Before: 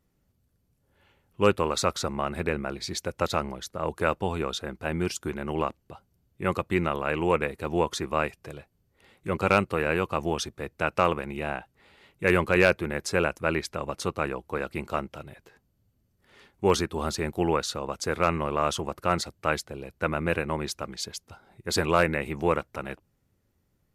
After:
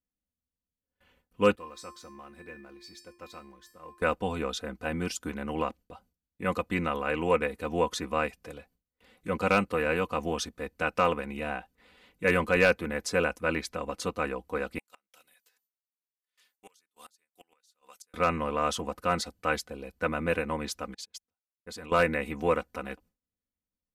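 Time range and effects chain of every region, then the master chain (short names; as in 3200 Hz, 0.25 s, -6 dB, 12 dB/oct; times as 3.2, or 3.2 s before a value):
1.55–4.02 G.711 law mismatch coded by mu + resonator 350 Hz, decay 0.42 s, harmonics odd, mix 90% + de-hum 131 Hz, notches 2
14.78–18.14 differentiator + flipped gate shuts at -33 dBFS, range -29 dB
20.94–21.92 level quantiser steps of 19 dB + upward expander 2.5:1, over -51 dBFS
whole clip: gate with hold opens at -55 dBFS; notch 820 Hz, Q 22; comb 4 ms, depth 72%; gain -3.5 dB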